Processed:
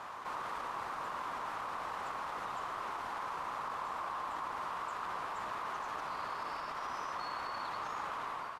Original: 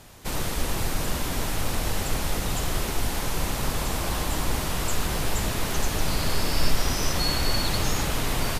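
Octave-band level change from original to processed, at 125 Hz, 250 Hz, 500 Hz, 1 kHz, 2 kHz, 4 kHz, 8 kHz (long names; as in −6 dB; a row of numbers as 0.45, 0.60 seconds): −30.5, −23.0, −14.5, −3.0, −11.0, −21.0, −27.5 decibels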